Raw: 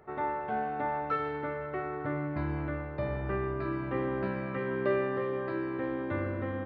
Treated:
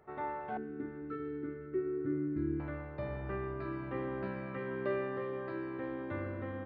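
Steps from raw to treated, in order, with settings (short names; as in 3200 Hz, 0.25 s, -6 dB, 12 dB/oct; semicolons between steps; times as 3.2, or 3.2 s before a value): 0.57–2.6 EQ curve 160 Hz 0 dB, 380 Hz +11 dB, 620 Hz -25 dB, 980 Hz -23 dB, 1400 Hz -7 dB, 2800 Hz -14 dB; gain -6 dB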